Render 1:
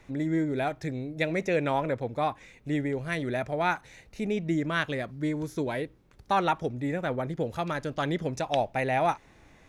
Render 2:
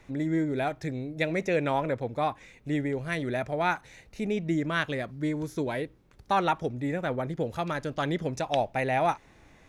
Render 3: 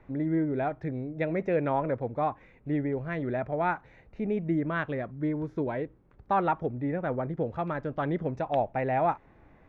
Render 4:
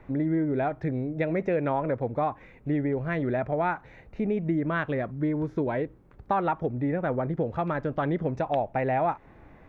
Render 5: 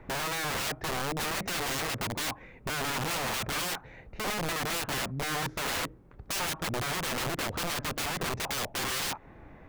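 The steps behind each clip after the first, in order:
no audible change
low-pass 1.5 kHz 12 dB/octave
compression 2.5:1, threshold -30 dBFS, peak gain reduction 6.5 dB; trim +5.5 dB
integer overflow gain 28 dB; trim +1 dB

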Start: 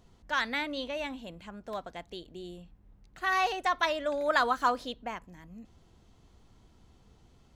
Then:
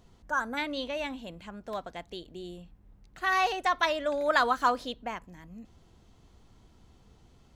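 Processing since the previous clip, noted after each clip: time-frequency box 0.30–0.57 s, 1.7–5.8 kHz -23 dB; trim +1.5 dB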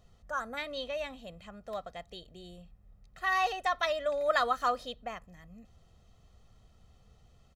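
comb 1.6 ms, depth 62%; trim -5 dB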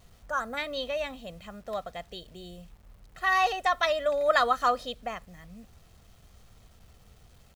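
bit crusher 11-bit; trim +4.5 dB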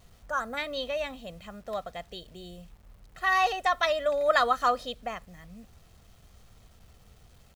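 no audible change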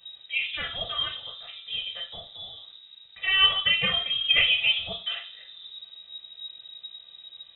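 reverberation RT60 0.60 s, pre-delay 3 ms, DRR -5 dB; frequency inversion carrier 3.8 kHz; trim -4.5 dB

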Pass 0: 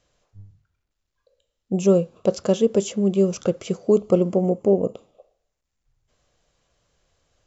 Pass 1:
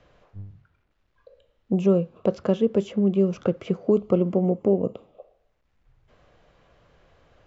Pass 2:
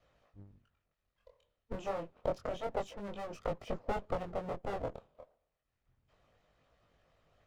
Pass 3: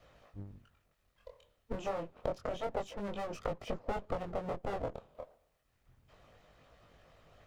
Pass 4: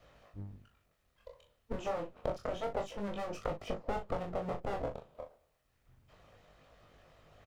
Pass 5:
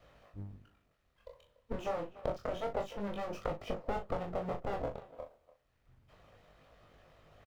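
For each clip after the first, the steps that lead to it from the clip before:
low-pass 2.5 kHz 12 dB/octave; dynamic bell 580 Hz, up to -4 dB, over -28 dBFS, Q 0.91; three bands compressed up and down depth 40%
comb filter that takes the minimum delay 1.6 ms; harmonic-percussive split harmonic -12 dB; chorus 0.29 Hz, delay 19 ms, depth 6.4 ms; trim -3.5 dB
compression 2:1, threshold -49 dBFS, peak gain reduction 12 dB; trim +9 dB
doubling 39 ms -8.5 dB
median filter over 5 samples; speakerphone echo 290 ms, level -18 dB

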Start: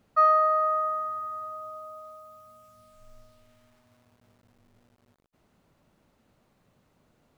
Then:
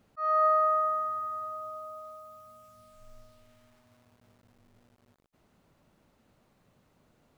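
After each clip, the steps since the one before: slow attack 303 ms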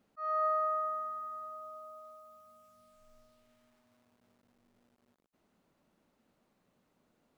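resonant low shelf 160 Hz -6 dB, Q 1.5; trim -7 dB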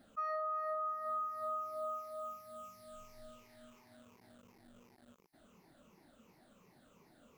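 drifting ripple filter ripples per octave 0.79, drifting -2.8 Hz, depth 13 dB; peak limiter -27 dBFS, peak gain reduction 8 dB; compression 12:1, threshold -43 dBFS, peak gain reduction 13.5 dB; trim +7.5 dB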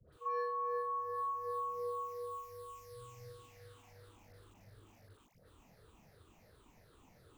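phase dispersion highs, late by 126 ms, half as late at 950 Hz; pre-echo 42 ms -15 dB; frequency shift -140 Hz; trim +1.5 dB

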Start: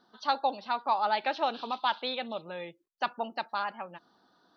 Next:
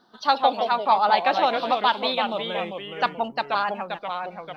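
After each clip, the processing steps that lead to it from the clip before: in parallel at -10.5 dB: hysteresis with a dead band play -47.5 dBFS; on the sum: ever faster or slower copies 113 ms, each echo -2 st, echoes 2, each echo -6 dB; trim +5.5 dB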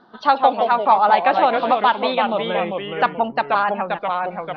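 in parallel at +1 dB: compression, threshold -27 dBFS, peak gain reduction 13 dB; on the sum: low-pass 2.4 kHz 12 dB/octave; trim +2.5 dB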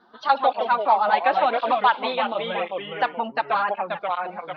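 bass shelf 400 Hz -7.5 dB; cancelling through-zero flanger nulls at 0.93 Hz, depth 7.5 ms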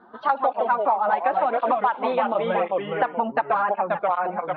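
low-pass 1.5 kHz 12 dB/octave; compression, threshold -25 dBFS, peak gain reduction 11.5 dB; trim +7 dB

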